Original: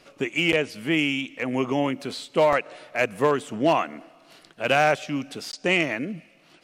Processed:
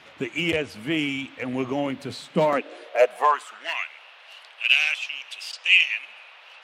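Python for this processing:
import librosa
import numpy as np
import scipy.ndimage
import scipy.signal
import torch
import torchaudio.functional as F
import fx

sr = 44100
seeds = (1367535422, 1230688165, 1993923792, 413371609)

y = fx.spec_quant(x, sr, step_db=15)
y = fx.filter_sweep_highpass(y, sr, from_hz=79.0, to_hz=2700.0, start_s=1.92, end_s=3.93, q=5.6)
y = fx.dmg_noise_band(y, sr, seeds[0], low_hz=550.0, high_hz=3300.0, level_db=-48.0)
y = y * 10.0 ** (-2.5 / 20.0)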